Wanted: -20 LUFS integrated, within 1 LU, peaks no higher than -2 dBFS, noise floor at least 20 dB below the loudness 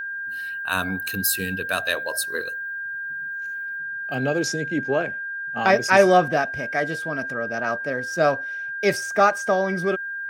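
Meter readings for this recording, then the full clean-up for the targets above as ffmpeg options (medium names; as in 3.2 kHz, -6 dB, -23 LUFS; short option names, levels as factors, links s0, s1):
steady tone 1.6 kHz; tone level -28 dBFS; loudness -23.0 LUFS; peak level -2.5 dBFS; loudness target -20.0 LUFS
-> -af "bandreject=f=1600:w=30"
-af "volume=1.41,alimiter=limit=0.794:level=0:latency=1"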